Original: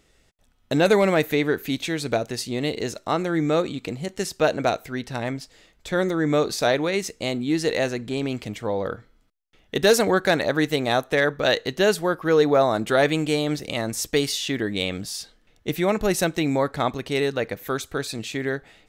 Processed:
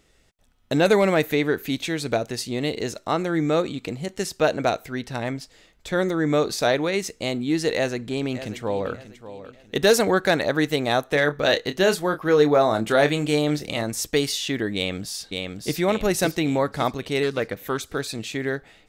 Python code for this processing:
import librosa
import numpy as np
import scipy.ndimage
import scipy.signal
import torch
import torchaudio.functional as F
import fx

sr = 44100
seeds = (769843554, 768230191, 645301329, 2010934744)

y = fx.echo_throw(x, sr, start_s=7.75, length_s=1.17, ms=590, feedback_pct=35, wet_db=-13.5)
y = fx.doubler(y, sr, ms=27.0, db=-9.0, at=(11.08, 13.83))
y = fx.echo_throw(y, sr, start_s=14.75, length_s=1.0, ms=560, feedback_pct=45, wet_db=-4.0)
y = fx.doppler_dist(y, sr, depth_ms=0.12, at=(17.23, 17.88))